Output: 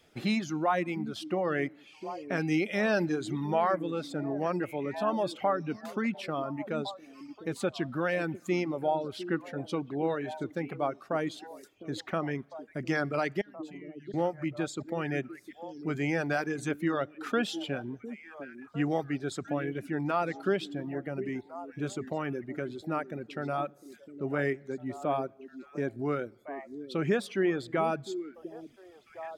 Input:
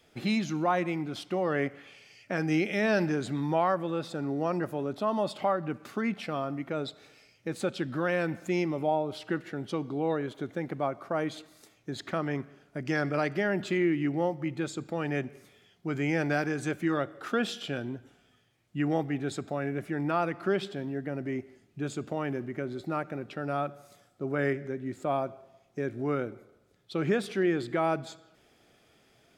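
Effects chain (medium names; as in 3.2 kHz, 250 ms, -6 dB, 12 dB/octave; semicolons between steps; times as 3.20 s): 13.41–14.14 s: amplifier tone stack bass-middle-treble 6-0-2; repeats whose band climbs or falls 704 ms, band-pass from 290 Hz, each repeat 1.4 oct, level -8 dB; reverb removal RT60 0.82 s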